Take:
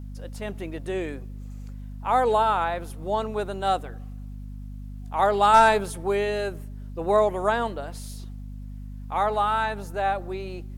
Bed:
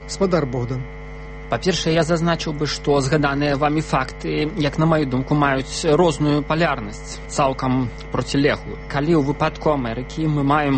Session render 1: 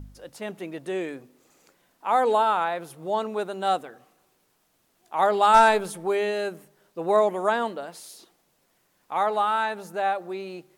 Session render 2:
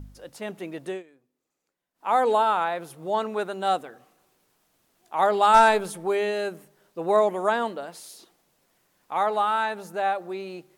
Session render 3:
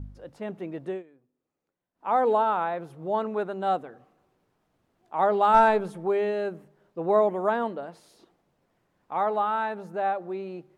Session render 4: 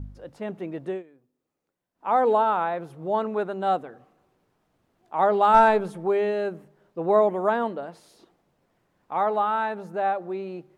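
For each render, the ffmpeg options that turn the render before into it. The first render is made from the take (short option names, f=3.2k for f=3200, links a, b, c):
-af "bandreject=f=50:t=h:w=4,bandreject=f=100:t=h:w=4,bandreject=f=150:t=h:w=4,bandreject=f=200:t=h:w=4,bandreject=f=250:t=h:w=4"
-filter_complex "[0:a]asettb=1/sr,asplit=3[a][b][c];[a]atrim=end=3.144[d];[b]atrim=start=3.14:end=3.54,asetpts=PTS-STARTPTS,afade=t=in:d=0.004:c=qsin,afade=t=out:st=0.396:d=0.004:c=qsin,equalizer=f=1.7k:t=o:w=1.1:g=4.5[e];[c]atrim=start=3.536[f];[d][e]acrossfade=d=0.004:c1=hsin:c2=qsin[g];[g][f]acrossfade=d=0.004:c1=qsin:c2=hsin,asplit=3[h][i][j];[h]atrim=end=1.03,asetpts=PTS-STARTPTS,afade=t=out:st=0.89:d=0.14:silence=0.0841395[k];[i]atrim=start=1.03:end=1.94,asetpts=PTS-STARTPTS,volume=-21.5dB[l];[j]atrim=start=1.94,asetpts=PTS-STARTPTS,afade=t=in:d=0.14:silence=0.0841395[m];[k][l][m]concat=n=3:v=0:a=1"
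-af "lowpass=f=1.1k:p=1,equalizer=f=87:w=0.7:g=5"
-af "volume=2dB"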